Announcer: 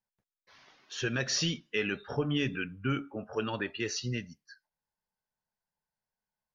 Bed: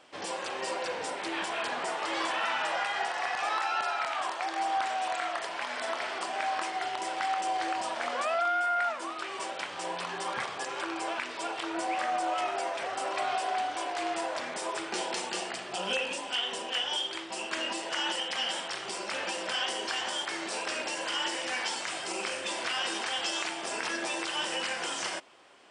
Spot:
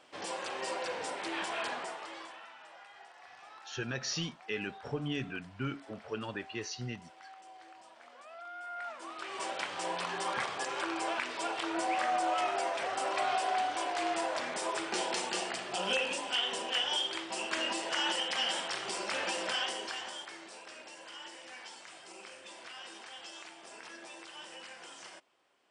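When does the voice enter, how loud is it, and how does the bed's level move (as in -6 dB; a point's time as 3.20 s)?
2.75 s, -5.5 dB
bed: 1.68 s -3 dB
2.53 s -22.5 dB
8.23 s -22.5 dB
9.49 s -0.5 dB
19.46 s -0.5 dB
20.59 s -15.5 dB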